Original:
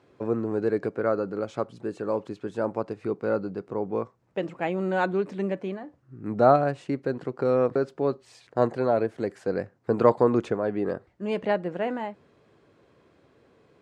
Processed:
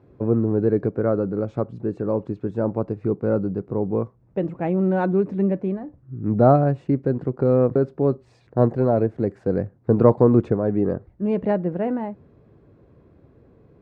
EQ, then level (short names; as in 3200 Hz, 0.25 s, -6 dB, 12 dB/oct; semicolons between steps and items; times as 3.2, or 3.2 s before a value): tilt -4.5 dB/oct; notch 3100 Hz, Q 15; -1.0 dB